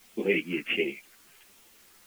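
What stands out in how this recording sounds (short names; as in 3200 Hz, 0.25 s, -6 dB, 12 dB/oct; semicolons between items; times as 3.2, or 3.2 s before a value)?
phasing stages 4, 1.4 Hz, lowest notch 650–1300 Hz; a quantiser's noise floor 10-bit, dither triangular; a shimmering, thickened sound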